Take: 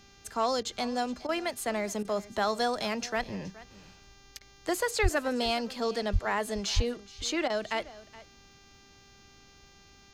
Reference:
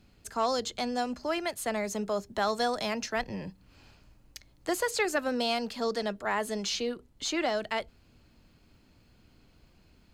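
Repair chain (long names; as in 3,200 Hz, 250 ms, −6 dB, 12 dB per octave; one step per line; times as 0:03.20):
hum removal 396.3 Hz, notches 17
high-pass at the plosives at 0:05.02/0:06.12/0:06.75
repair the gap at 0:00.63/0:01.27/0:02.03/0:04.39/0:07.48, 17 ms
echo removal 421 ms −19 dB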